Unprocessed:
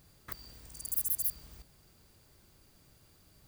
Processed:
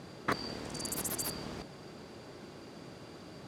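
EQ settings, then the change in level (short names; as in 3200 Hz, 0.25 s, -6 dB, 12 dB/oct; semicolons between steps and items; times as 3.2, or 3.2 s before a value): BPF 230–5400 Hz; tilt shelf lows +5.5 dB, about 1200 Hz; +17.5 dB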